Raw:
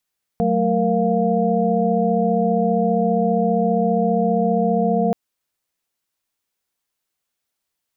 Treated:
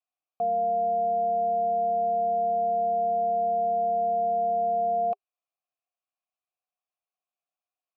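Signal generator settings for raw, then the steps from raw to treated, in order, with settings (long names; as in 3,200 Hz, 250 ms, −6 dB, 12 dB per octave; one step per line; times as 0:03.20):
held notes F#3/A3/A#4/F5 sine, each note −21 dBFS 4.73 s
formant filter a
notch filter 400 Hz, Q 12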